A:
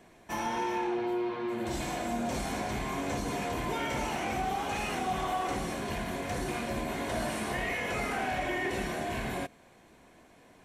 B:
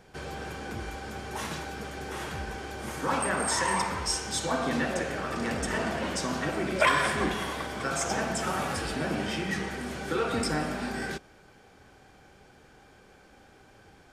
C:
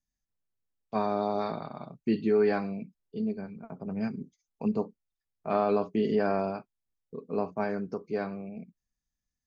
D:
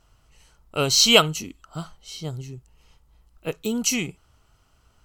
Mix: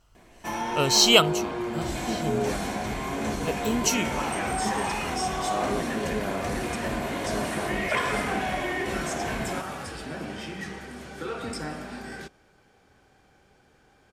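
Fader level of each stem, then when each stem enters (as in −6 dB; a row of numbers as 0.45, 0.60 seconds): +2.5, −5.0, −5.5, −2.0 decibels; 0.15, 1.10, 0.00, 0.00 seconds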